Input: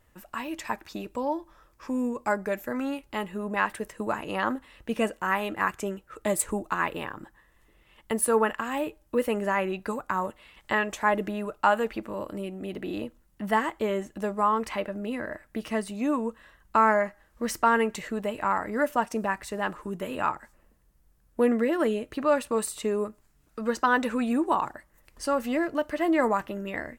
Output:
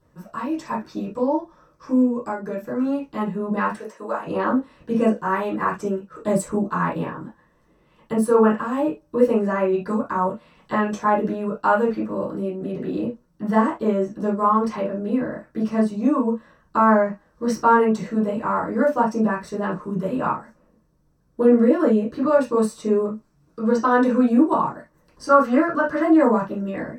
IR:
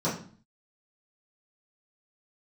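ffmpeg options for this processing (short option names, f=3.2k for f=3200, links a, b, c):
-filter_complex "[0:a]asettb=1/sr,asplit=3[a][b][c];[a]atrim=end=2.024[d];[b]atrim=start=2.02:end=2.85,asetpts=PTS-STARTPTS,afade=t=in:d=0.004:c=qsin,afade=t=out:st=0.826:d=0.004:c=qsin,acompressor=threshold=-29dB:ratio=5[e];[c]atrim=start=2.846[f];[d][e]acrossfade=d=0.004:c1=hsin:c2=qsin[g];[g][f]acrossfade=d=0.004:c1=qsin:c2=hsin,asettb=1/sr,asplit=3[h][i][j];[h]atrim=end=3.774[k];[i]atrim=start=3.77:end=4.26,asetpts=PTS-STARTPTS,afade=t=in:d=0.004:c=qsin,afade=t=out:st=0.486:d=0.004:c=qsin,highpass=520[l];[j]atrim=start=4.256[m];[k][l]acrossfade=d=0.004:c1=hsin:c2=qsin[n];[n][m]acrossfade=d=0.004:c1=qsin:c2=hsin,asettb=1/sr,asplit=3[o][p][q];[o]atrim=end=25.294[r];[p]atrim=start=25.29:end=26.03,asetpts=PTS-STARTPTS,afade=t=in:d=0.004:c=qsin,afade=t=out:st=0.736:d=0.004:c=qsin,equalizer=f=1.4k:t=o:w=0.96:g=13.5[s];[q]atrim=start=26.026[t];[r][s]acrossfade=d=0.004:c1=hsin:c2=qsin[u];[u][t]acrossfade=d=0.004:c1=qsin:c2=hsin[v];[1:a]atrim=start_sample=2205,atrim=end_sample=3528[w];[v][w]afir=irnorm=-1:irlink=0,volume=-7.5dB"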